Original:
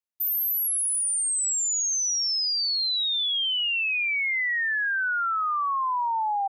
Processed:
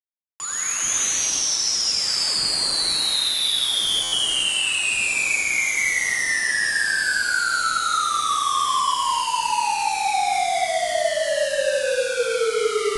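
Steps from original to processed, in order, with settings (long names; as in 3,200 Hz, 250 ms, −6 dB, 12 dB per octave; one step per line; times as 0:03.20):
high-shelf EQ 6,300 Hz −6.5 dB
brickwall limiter −27 dBFS, peak gain reduction 4 dB
comparator with hysteresis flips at −48.5 dBFS
reverb whose tail is shaped and stops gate 330 ms flat, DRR −8 dB
wrong playback speed 15 ips tape played at 7.5 ips
buffer that repeats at 0:04.03, samples 512, times 7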